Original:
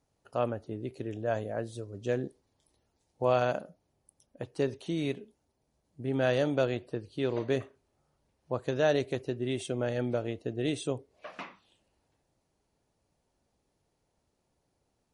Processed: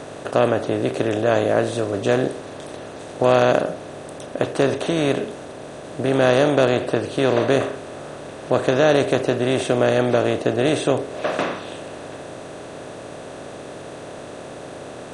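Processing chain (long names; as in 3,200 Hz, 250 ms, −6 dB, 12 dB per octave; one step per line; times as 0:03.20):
compressor on every frequency bin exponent 0.4
level +7 dB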